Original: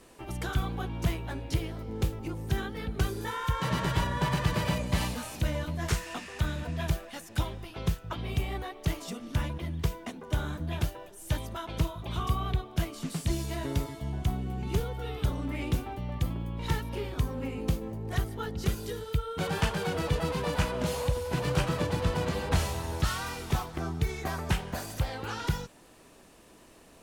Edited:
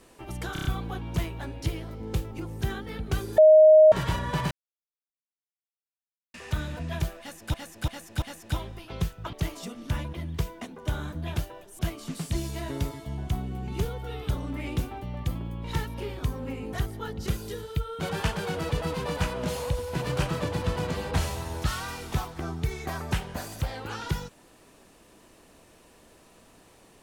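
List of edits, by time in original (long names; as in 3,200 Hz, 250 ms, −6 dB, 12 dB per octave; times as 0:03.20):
0:00.53: stutter 0.03 s, 5 plays
0:03.26–0:03.80: beep over 623 Hz −10.5 dBFS
0:04.39–0:06.22: silence
0:07.08–0:07.42: repeat, 4 plays
0:08.19–0:08.78: remove
0:11.24–0:12.74: remove
0:17.68–0:18.11: remove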